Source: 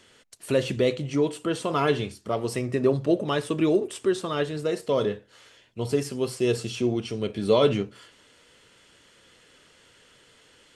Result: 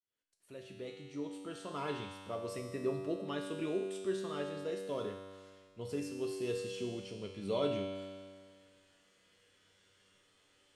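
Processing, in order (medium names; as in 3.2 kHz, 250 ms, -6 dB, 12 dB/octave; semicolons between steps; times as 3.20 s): fade-in on the opening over 2.12 s; feedback comb 96 Hz, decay 1.9 s, mix 90%; trim +2.5 dB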